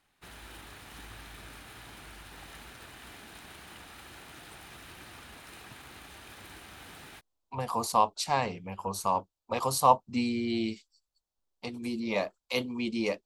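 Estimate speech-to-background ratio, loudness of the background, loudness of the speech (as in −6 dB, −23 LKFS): 17.5 dB, −47.5 LKFS, −30.0 LKFS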